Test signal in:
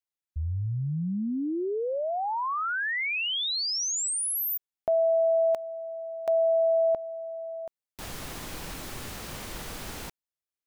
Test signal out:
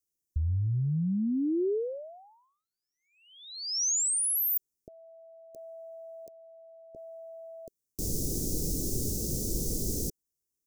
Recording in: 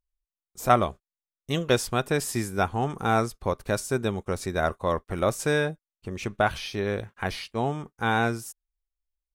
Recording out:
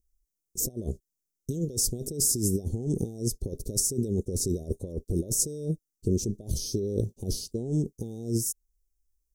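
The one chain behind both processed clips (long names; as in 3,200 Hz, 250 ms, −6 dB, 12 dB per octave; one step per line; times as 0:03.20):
compressor whose output falls as the input rises −33 dBFS, ratio −1
elliptic band-stop filter 420–5,800 Hz, stop band 80 dB
level +5 dB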